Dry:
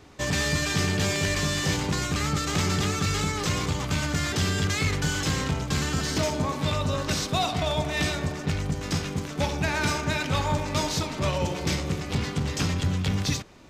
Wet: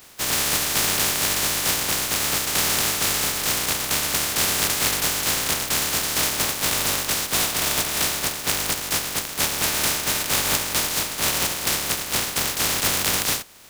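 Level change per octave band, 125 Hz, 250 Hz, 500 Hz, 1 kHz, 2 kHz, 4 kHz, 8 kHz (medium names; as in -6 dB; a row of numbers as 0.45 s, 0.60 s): -10.0 dB, -5.5 dB, -1.5 dB, +2.0 dB, +4.0 dB, +7.5 dB, +12.0 dB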